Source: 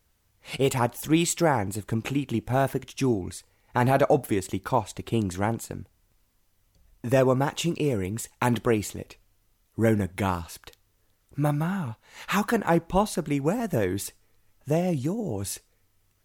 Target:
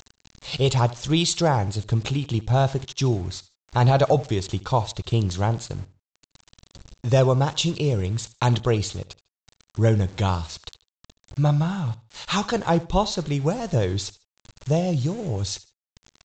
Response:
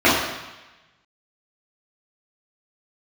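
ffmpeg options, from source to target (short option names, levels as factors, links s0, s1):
-af "lowshelf=f=150:g=5.5,acompressor=mode=upward:threshold=0.0141:ratio=2.5,equalizer=f=125:t=o:w=1:g=4,equalizer=f=250:t=o:w=1:g=-9,equalizer=f=2000:t=o:w=1:g=-9,equalizer=f=4000:t=o:w=1:g=10,aresample=16000,aeval=exprs='val(0)*gte(abs(val(0)),0.00708)':c=same,aresample=44100,aecho=1:1:75|150:0.112|0.0314,volume=1.41"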